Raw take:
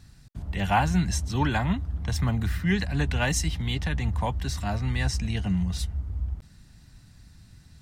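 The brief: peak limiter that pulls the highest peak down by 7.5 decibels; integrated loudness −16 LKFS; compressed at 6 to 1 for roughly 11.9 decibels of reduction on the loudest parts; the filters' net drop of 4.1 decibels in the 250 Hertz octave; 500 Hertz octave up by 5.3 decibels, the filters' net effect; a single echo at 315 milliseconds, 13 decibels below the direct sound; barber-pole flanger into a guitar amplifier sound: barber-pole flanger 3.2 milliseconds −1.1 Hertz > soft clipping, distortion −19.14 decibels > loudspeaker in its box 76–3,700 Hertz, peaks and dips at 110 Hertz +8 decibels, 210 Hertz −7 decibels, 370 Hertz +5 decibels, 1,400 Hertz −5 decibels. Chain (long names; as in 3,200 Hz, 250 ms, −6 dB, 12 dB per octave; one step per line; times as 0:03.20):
parametric band 250 Hz −5.5 dB
parametric band 500 Hz +7 dB
downward compressor 6 to 1, threshold −29 dBFS
brickwall limiter −27.5 dBFS
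single-tap delay 315 ms −13 dB
barber-pole flanger 3.2 ms −1.1 Hz
soft clipping −30.5 dBFS
loudspeaker in its box 76–3,700 Hz, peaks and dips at 110 Hz +8 dB, 210 Hz −7 dB, 370 Hz +5 dB, 1,400 Hz −5 dB
level +25 dB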